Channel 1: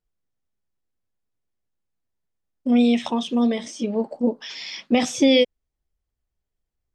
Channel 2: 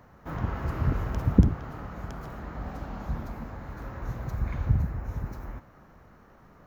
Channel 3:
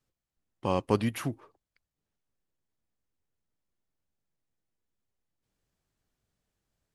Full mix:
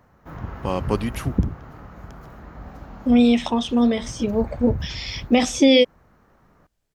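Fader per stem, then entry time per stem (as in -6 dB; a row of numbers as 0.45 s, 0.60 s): +2.0 dB, -2.5 dB, +3.0 dB; 0.40 s, 0.00 s, 0.00 s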